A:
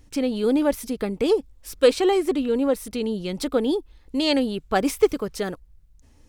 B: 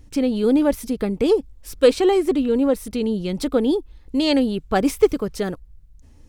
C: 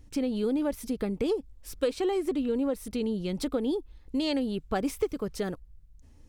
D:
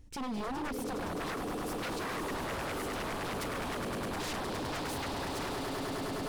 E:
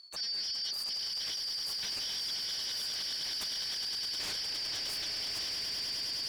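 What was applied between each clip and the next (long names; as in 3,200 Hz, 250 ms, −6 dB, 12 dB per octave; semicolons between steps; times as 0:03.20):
low-shelf EQ 350 Hz +6.5 dB
downward compressor 4 to 1, threshold −19 dBFS, peak gain reduction 9 dB; level −6 dB
echo that builds up and dies away 103 ms, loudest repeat 8, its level −9 dB; wave folding −28.5 dBFS; level −3 dB
band-splitting scrambler in four parts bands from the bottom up 4321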